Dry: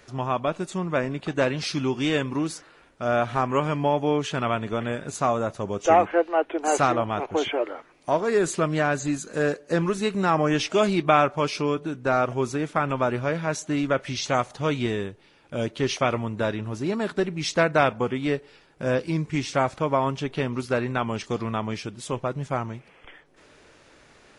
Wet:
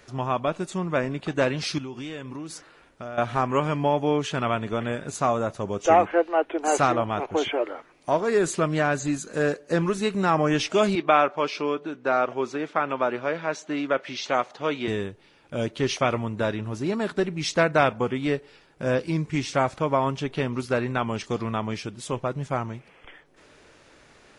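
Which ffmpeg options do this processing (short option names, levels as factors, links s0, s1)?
-filter_complex "[0:a]asettb=1/sr,asplit=3[s0][s1][s2];[s0]atrim=end=1.784[s3];[s1]atrim=start=1.78:end=3.18,asetpts=PTS-STARTPTS,afade=t=in:d=0.004:c=qsin,afade=t=out:st=1.396:d=0.004:c=qsin,acompressor=threshold=0.0224:ratio=5:attack=3.2:release=140:knee=1:detection=peak[s4];[s2]atrim=start=3.176[s5];[s3][s4]acrossfade=d=0.004:c1=hsin:c2=qsin[s6];[s6][s5]acrossfade=d=0.004:c1=qsin:c2=hsin,asettb=1/sr,asplit=3[s7][s8][s9];[s7]atrim=end=10.954[s10];[s8]atrim=start=10.95:end=14.88,asetpts=PTS-STARTPTS,afade=t=in:d=0.004:c=qsin,afade=t=out:st=3.926:d=0.004:c=qsin,highpass=290,lowpass=4500[s11];[s9]atrim=start=14.876[s12];[s10][s11]acrossfade=d=0.004:c1=hsin:c2=qsin[s13];[s13][s12]acrossfade=d=0.004:c1=qsin:c2=hsin"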